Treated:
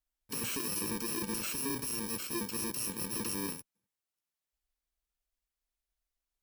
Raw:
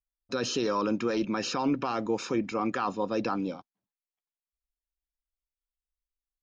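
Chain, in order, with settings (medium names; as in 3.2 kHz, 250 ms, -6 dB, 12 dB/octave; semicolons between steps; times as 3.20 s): bit-reversed sample order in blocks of 64 samples; hard clipper -34 dBFS, distortion -5 dB; Chebyshev shaper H 3 -12 dB, 5 -12 dB, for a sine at -34 dBFS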